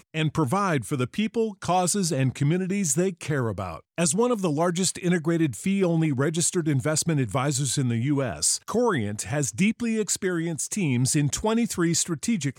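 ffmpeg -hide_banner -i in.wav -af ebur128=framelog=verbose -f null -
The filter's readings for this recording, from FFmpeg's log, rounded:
Integrated loudness:
  I:         -24.6 LUFS
  Threshold: -34.6 LUFS
Loudness range:
  LRA:         1.1 LU
  Threshold: -44.5 LUFS
  LRA low:   -25.0 LUFS
  LRA high:  -23.9 LUFS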